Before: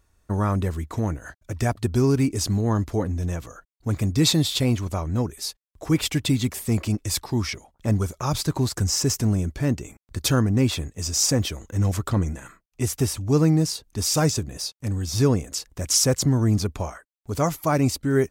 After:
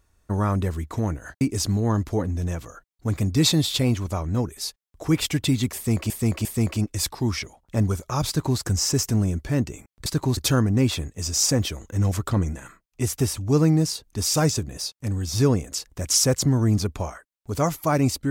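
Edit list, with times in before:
1.41–2.22 cut
6.56–6.91 loop, 3 plays
8.39–8.7 copy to 10.17

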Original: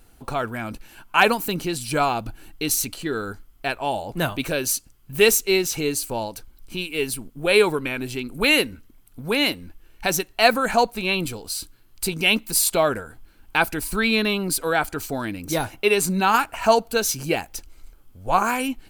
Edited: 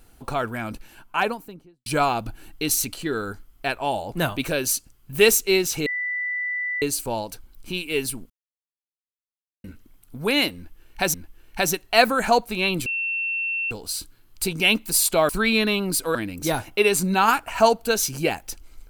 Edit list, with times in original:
0.7–1.86 studio fade out
5.86 add tone 1980 Hz -24 dBFS 0.96 s
7.34–8.68 mute
9.6–10.18 loop, 2 plays
11.32 add tone 2700 Hz -23 dBFS 0.85 s
12.9–13.87 cut
14.73–15.21 cut

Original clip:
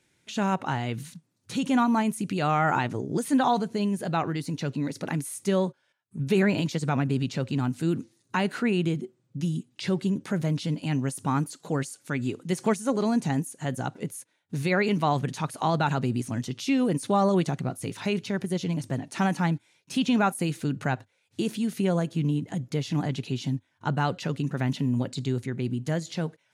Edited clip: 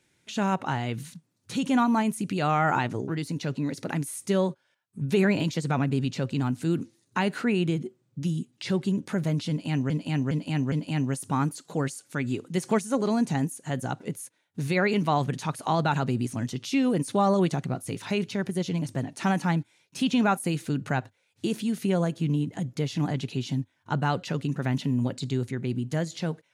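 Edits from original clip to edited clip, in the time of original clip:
3.08–4.26 cut
10.67–11.08 loop, 4 plays

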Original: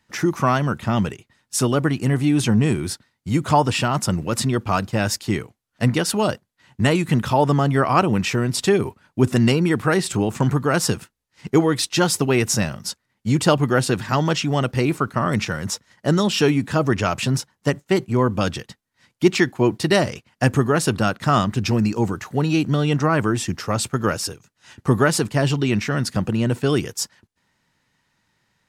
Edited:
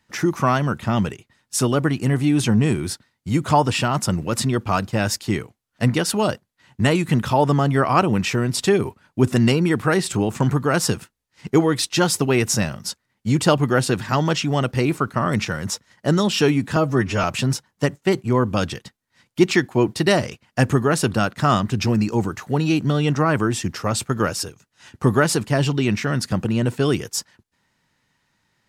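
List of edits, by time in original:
16.76–17.08 stretch 1.5×

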